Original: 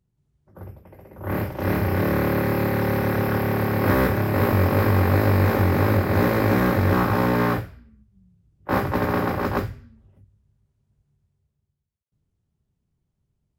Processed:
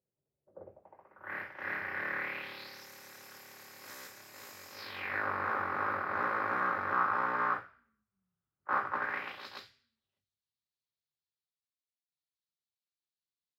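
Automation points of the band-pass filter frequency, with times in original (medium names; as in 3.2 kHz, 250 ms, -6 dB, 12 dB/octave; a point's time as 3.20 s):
band-pass filter, Q 3.5
0.68 s 540 Hz
1.30 s 1.8 kHz
2.18 s 1.8 kHz
2.89 s 6.9 kHz
4.70 s 6.9 kHz
5.26 s 1.3 kHz
8.97 s 1.3 kHz
9.46 s 4.1 kHz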